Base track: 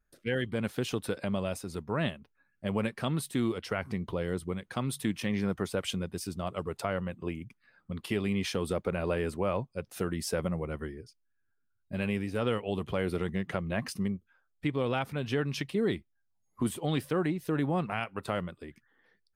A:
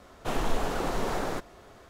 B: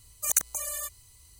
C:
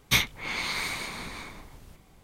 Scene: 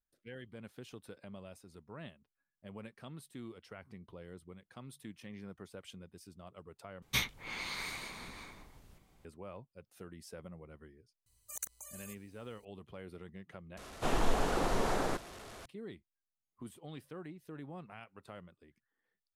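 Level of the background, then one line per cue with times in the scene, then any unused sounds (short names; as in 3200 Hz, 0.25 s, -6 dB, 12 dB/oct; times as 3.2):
base track -17.5 dB
7.02 replace with C -9.5 dB
11.26 add B -17 dB
13.77 replace with A -2 dB + delta modulation 64 kbps, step -42 dBFS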